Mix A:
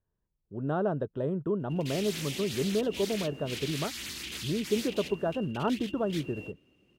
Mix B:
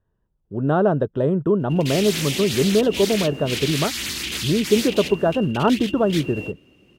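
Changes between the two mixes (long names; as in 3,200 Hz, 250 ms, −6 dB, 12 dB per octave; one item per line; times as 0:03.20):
speech +11.0 dB
background +11.5 dB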